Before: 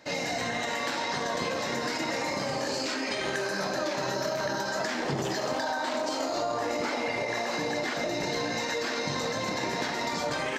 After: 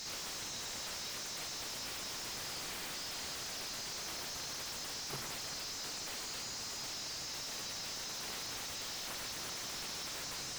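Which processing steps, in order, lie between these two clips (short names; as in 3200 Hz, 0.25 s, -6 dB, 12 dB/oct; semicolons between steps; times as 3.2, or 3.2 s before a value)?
Chebyshev band-stop 130–5200 Hz, order 3; low shelf 280 Hz -9 dB; notches 60/120 Hz; thinning echo 0.497 s, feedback 63%, high-pass 470 Hz, level -8.5 dB; wrapped overs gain 37.5 dB; limiter -44 dBFS, peak gain reduction 6.5 dB; high shelf 3500 Hz +9 dB; overdrive pedal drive 39 dB, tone 1400 Hz, clips at -31 dBFS; gain +5 dB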